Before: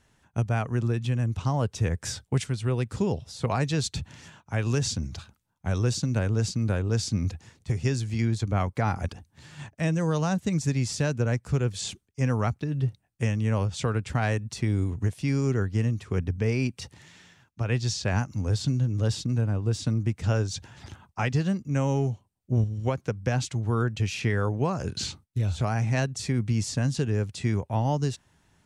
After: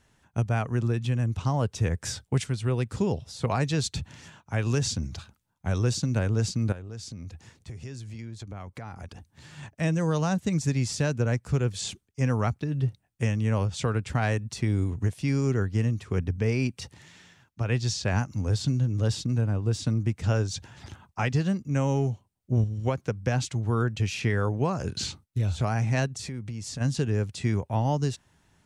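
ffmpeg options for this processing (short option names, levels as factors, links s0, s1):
-filter_complex "[0:a]asettb=1/sr,asplit=3[s0][s1][s2];[s0]atrim=end=6.724[s3];[s1]atrim=start=6.72:end=9.63,asetpts=PTS-STARTPTS,afade=t=in:d=0.004:c=qsin,afade=t=out:st=2.906:d=0.004:c=qsin,acompressor=threshold=0.0126:ratio=4:attack=3.2:release=140:knee=1:detection=peak[s4];[s2]atrim=start=9.626[s5];[s3][s4]acrossfade=d=0.004:c1=hsin:c2=qsin[s6];[s6][s5]acrossfade=d=0.004:c1=qsin:c2=hsin,asplit=3[s7][s8][s9];[s7]afade=t=out:st=26.07:d=0.02[s10];[s8]acompressor=threshold=0.0224:ratio=4:attack=3.2:release=140:knee=1:detection=peak,afade=t=in:st=26.07:d=0.02,afade=t=out:st=26.8:d=0.02[s11];[s9]afade=t=in:st=26.8:d=0.02[s12];[s10][s11][s12]amix=inputs=3:normalize=0"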